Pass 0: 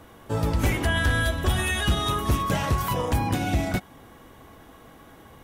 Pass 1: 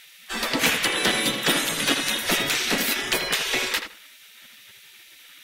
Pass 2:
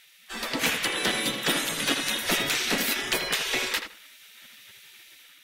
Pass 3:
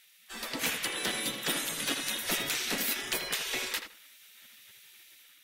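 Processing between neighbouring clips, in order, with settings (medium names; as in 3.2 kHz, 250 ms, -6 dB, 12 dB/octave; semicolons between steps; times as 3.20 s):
spectral gate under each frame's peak -20 dB weak; graphic EQ 125/250/1000/2000/4000 Hz +6/+8/-4/+6/+6 dB; on a send: filtered feedback delay 81 ms, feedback 21%, low-pass 2.9 kHz, level -7 dB; on the sum: trim +9 dB
level rider gain up to 5.5 dB; trim -7 dB
treble shelf 7.1 kHz +7.5 dB; trim -7.5 dB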